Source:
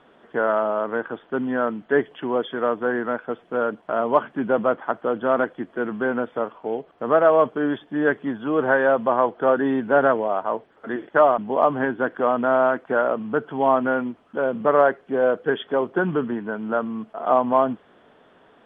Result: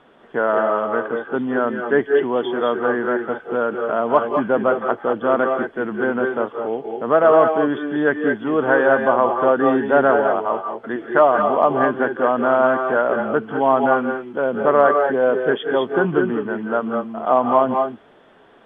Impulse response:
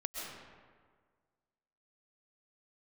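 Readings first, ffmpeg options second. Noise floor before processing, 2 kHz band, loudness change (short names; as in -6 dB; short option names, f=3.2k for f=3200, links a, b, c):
-55 dBFS, +4.0 dB, +3.5 dB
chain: -filter_complex "[1:a]atrim=start_sample=2205,atrim=end_sample=6174,asetrate=27783,aresample=44100[a];[0:a][a]afir=irnorm=-1:irlink=0,volume=2.5dB"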